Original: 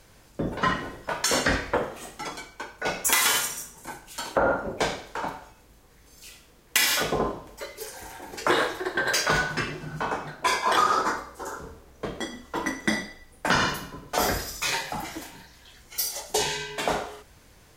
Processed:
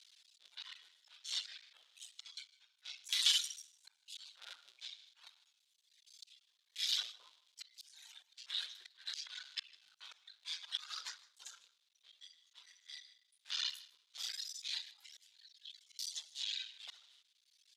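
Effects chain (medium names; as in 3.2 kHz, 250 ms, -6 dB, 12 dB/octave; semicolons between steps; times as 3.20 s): cycle switcher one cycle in 3, muted; reverb removal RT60 1.4 s; slow attack 259 ms; ladder band-pass 4.1 kHz, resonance 60%; delay 155 ms -21.5 dB; trim +8.5 dB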